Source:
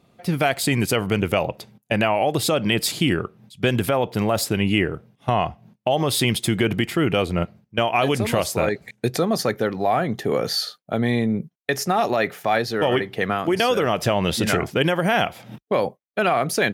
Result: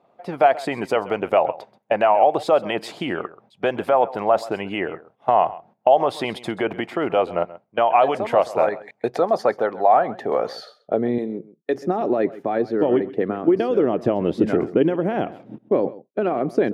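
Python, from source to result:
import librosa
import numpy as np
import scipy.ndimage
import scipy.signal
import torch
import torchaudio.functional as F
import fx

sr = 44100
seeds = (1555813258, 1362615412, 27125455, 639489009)

y = fx.hpss(x, sr, part='harmonic', gain_db=-5)
y = y + 10.0 ** (-18.0 / 20.0) * np.pad(y, (int(132 * sr / 1000.0), 0))[:len(y)]
y = fx.filter_sweep_bandpass(y, sr, from_hz=750.0, to_hz=320.0, start_s=10.5, end_s=11.2, q=1.8)
y = fx.bass_treble(y, sr, bass_db=-13, treble_db=12, at=(11.18, 11.75))
y = y * 10.0 ** (9.0 / 20.0)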